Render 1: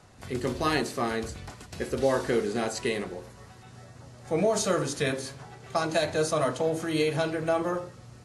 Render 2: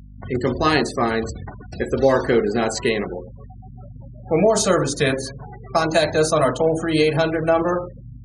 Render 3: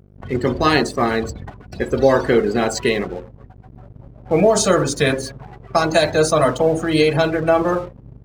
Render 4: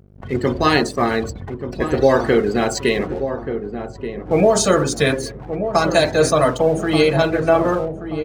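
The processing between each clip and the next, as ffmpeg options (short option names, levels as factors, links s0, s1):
-af "afftfilt=real='re*gte(hypot(re,im),0.0126)':imag='im*gte(hypot(re,im),0.0126)':win_size=1024:overlap=0.75,aeval=exprs='val(0)+0.00355*(sin(2*PI*50*n/s)+sin(2*PI*2*50*n/s)/2+sin(2*PI*3*50*n/s)/3+sin(2*PI*4*50*n/s)/4+sin(2*PI*5*50*n/s)/5)':c=same,volume=2.66"
-af "aeval=exprs='sgn(val(0))*max(abs(val(0))-0.0075,0)':c=same,volume=1.33"
-filter_complex "[0:a]asplit=2[s0][s1];[s1]adelay=1181,lowpass=f=900:p=1,volume=0.398,asplit=2[s2][s3];[s3]adelay=1181,lowpass=f=900:p=1,volume=0.45,asplit=2[s4][s5];[s5]adelay=1181,lowpass=f=900:p=1,volume=0.45,asplit=2[s6][s7];[s7]adelay=1181,lowpass=f=900:p=1,volume=0.45,asplit=2[s8][s9];[s9]adelay=1181,lowpass=f=900:p=1,volume=0.45[s10];[s0][s2][s4][s6][s8][s10]amix=inputs=6:normalize=0"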